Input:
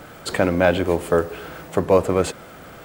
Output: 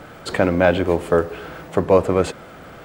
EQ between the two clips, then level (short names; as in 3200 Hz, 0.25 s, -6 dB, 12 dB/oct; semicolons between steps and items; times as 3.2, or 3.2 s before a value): high shelf 6500 Hz -10 dB; +1.5 dB